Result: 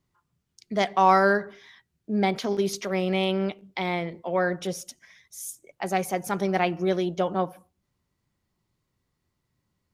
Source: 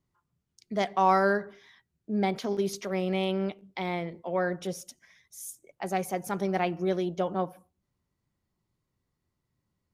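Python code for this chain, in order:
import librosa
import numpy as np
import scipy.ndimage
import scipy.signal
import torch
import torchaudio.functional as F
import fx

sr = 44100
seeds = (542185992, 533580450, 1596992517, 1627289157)

y = fx.peak_eq(x, sr, hz=3100.0, db=3.0, octaves=3.0)
y = F.gain(torch.from_numpy(y), 3.0).numpy()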